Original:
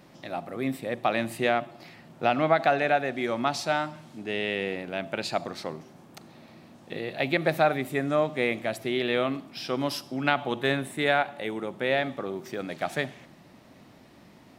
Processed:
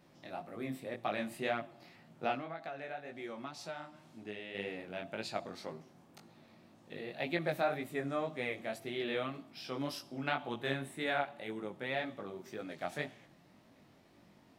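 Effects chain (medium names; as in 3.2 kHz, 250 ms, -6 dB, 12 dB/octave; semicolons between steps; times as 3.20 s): 2.34–4.55 s: compression 4:1, threshold -31 dBFS, peak gain reduction 13 dB; chorus 1.9 Hz, delay 17.5 ms, depth 5.3 ms; trim -7 dB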